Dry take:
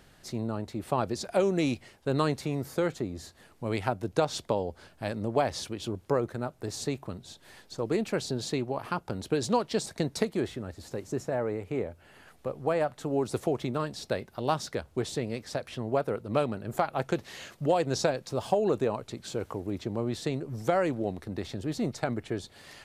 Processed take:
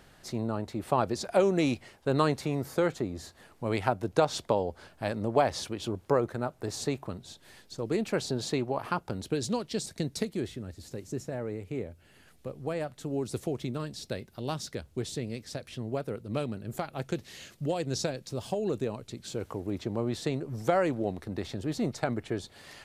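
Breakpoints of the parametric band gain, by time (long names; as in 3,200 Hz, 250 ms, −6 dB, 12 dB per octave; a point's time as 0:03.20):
parametric band 930 Hz 2.2 octaves
0:07.03 +2.5 dB
0:07.76 −6.5 dB
0:08.21 +2 dB
0:08.91 +2 dB
0:09.52 −9.5 dB
0:19.06 −9.5 dB
0:19.71 +0.5 dB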